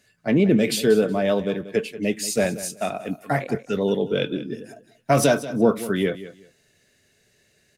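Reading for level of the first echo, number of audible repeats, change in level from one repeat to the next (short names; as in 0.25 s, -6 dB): -15.0 dB, 2, -13.5 dB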